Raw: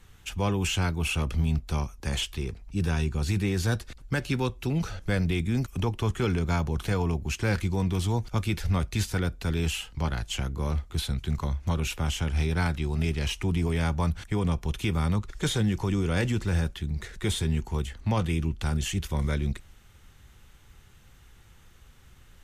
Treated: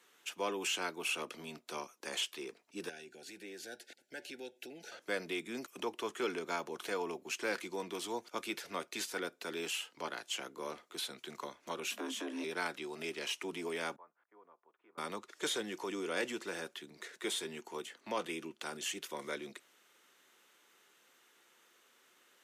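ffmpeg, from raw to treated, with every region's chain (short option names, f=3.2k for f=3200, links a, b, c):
-filter_complex "[0:a]asettb=1/sr,asplit=3[a][b][c];[a]atrim=end=2.894[d];[b]atrim=start=2.89:end=4.92,asetpts=PTS-STARTPTS,afade=t=in:d=0.004:c=qsin,afade=t=out:st=2.026:d=0.004:c=qsin,asuperstop=centerf=1100:order=20:qfactor=2.1,equalizer=f=1.1k:t=o:w=0.44:g=4.5,acompressor=threshold=-37dB:ratio=2.5:attack=3.2:release=140:knee=1:detection=peak[e];[c]atrim=start=4.916[f];[d][e]acrossfade=d=0.004:c1=hsin:c2=qsin[g];[g][f]acrossfade=d=0.004:c1=qsin:c2=hsin,asettb=1/sr,asplit=3[h][i][j];[h]atrim=end=11.914[k];[i]atrim=start=11.91:end=12.44,asetpts=PTS-STARTPTS,afade=t=in:d=0.004:c=qsin,afade=t=out:st=0.526:d=0.004:c=qsin,afreqshift=190,acompressor=threshold=-32dB:ratio=2:attack=3.2:release=140:knee=1:detection=peak,asplit=2[l][m];[m]adelay=19,volume=-10dB[n];[l][n]amix=inputs=2:normalize=0,atrim=end_sample=23373[o];[j]atrim=start=12.436[p];[k][o]acrossfade=d=0.004:c1=hsin:c2=qsin[q];[q][p]acrossfade=d=0.004:c1=qsin:c2=hsin,asettb=1/sr,asplit=3[r][s][t];[r]atrim=end=13.964[u];[s]atrim=start=13.96:end=14.98,asetpts=PTS-STARTPTS,afade=t=in:d=0.004:c=qsin,afade=t=out:st=1.016:d=0.004:c=qsin,lowpass=f=1.2k:w=0.5412,lowpass=f=1.2k:w=1.3066,aderivative[v];[t]atrim=start=14.976[w];[u][v]acrossfade=d=0.004:c1=hsin:c2=qsin[x];[x][w]acrossfade=d=0.004:c1=qsin:c2=hsin,highpass=f=320:w=0.5412,highpass=f=320:w=1.3066,bandreject=f=800:w=12,volume=-5dB"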